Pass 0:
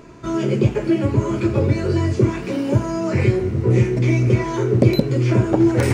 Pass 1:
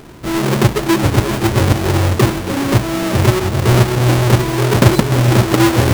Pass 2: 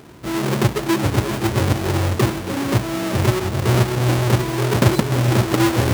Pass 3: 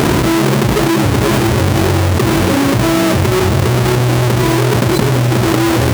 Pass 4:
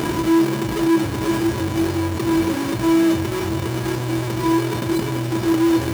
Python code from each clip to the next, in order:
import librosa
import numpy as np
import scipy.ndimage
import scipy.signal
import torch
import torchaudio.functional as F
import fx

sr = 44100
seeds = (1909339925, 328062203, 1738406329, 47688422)

y1 = fx.halfwave_hold(x, sr)
y1 = y1 + 10.0 ** (-13.0 / 20.0) * np.pad(y1, (int(423 * sr / 1000.0), 0))[:len(y1)]
y2 = scipy.signal.sosfilt(scipy.signal.butter(2, 56.0, 'highpass', fs=sr, output='sos'), y1)
y2 = y2 * librosa.db_to_amplitude(-5.0)
y3 = fx.env_flatten(y2, sr, amount_pct=100)
y3 = y3 * librosa.db_to_amplitude(-2.0)
y4 = fx.comb_fb(y3, sr, f0_hz=330.0, decay_s=0.16, harmonics='odd', damping=0.0, mix_pct=80)